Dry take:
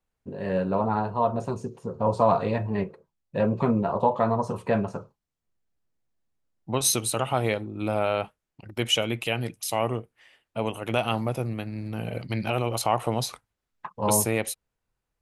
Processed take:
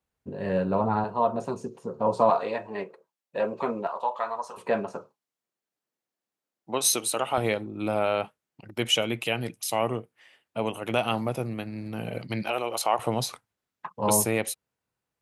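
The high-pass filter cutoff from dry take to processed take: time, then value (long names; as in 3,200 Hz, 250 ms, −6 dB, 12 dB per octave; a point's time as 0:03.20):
52 Hz
from 0:01.04 190 Hz
from 0:02.30 420 Hz
from 0:03.87 970 Hz
from 0:04.57 300 Hz
from 0:07.38 130 Hz
from 0:12.43 400 Hz
from 0:12.99 110 Hz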